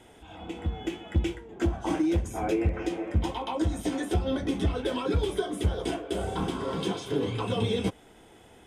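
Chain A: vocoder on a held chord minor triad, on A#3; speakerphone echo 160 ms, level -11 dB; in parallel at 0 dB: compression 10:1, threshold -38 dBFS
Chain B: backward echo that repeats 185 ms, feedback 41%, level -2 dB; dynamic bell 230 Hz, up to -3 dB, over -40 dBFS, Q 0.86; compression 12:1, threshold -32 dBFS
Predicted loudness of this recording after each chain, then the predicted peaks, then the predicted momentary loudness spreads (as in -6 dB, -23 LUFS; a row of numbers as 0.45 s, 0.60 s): -30.0 LUFS, -37.0 LUFS; -13.5 dBFS, -22.5 dBFS; 7 LU, 2 LU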